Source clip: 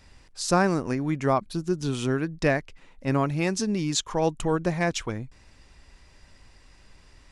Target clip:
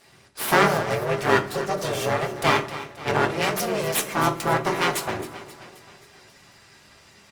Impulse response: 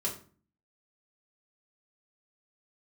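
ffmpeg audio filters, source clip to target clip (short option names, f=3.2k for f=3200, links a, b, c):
-filter_complex "[0:a]afreqshift=23,asplit=2[a][b];[b]adelay=150,highpass=300,lowpass=3.4k,asoftclip=type=hard:threshold=-16.5dB,volume=-28dB[c];[a][c]amix=inputs=2:normalize=0,aeval=exprs='abs(val(0))':c=same,highpass=f=390:p=1,asplit=2[d][e];[e]aecho=0:1:266|532|798|1064|1330:0.2|0.106|0.056|0.0297|0.0157[f];[d][f]amix=inputs=2:normalize=0,asplit=2[g][h];[h]asetrate=35002,aresample=44100,atempo=1.25992,volume=-6dB[i];[g][i]amix=inputs=2:normalize=0,asplit=2[j][k];[1:a]atrim=start_sample=2205[l];[k][l]afir=irnorm=-1:irlink=0,volume=-4.5dB[m];[j][m]amix=inputs=2:normalize=0,volume=3dB" -ar 48000 -c:a libopus -b:a 32k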